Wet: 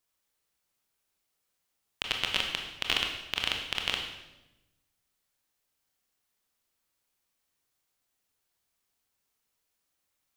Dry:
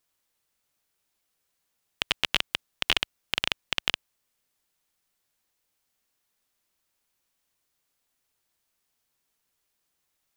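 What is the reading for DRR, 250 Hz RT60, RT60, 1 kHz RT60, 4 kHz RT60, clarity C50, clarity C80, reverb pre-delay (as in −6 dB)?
1.5 dB, 1.4 s, 1.0 s, 0.90 s, 0.90 s, 4.5 dB, 7.0 dB, 22 ms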